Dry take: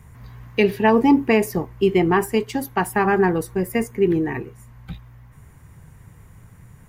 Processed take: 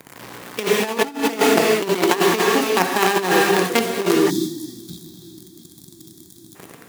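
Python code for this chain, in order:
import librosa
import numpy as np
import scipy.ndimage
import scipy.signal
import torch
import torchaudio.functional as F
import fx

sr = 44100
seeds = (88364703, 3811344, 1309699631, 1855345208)

p1 = fx.dead_time(x, sr, dead_ms=0.13)
p2 = fx.quant_companded(p1, sr, bits=2)
p3 = p1 + (p2 * 10.0 ** (-4.0 / 20.0))
p4 = fx.rev_gated(p3, sr, seeds[0], gate_ms=440, shape='flat', drr_db=3.5)
p5 = fx.over_compress(p4, sr, threshold_db=-13.0, ratio=-0.5)
p6 = scipy.signal.sosfilt(scipy.signal.butter(2, 270.0, 'highpass', fs=sr, output='sos'), p5)
p7 = p6 + fx.echo_swing(p6, sr, ms=1145, ratio=1.5, feedback_pct=50, wet_db=-23.5, dry=0)
p8 = fx.spec_box(p7, sr, start_s=4.3, length_s=2.25, low_hz=370.0, high_hz=3200.0, gain_db=-24)
y = p8 * 10.0 ** (-2.5 / 20.0)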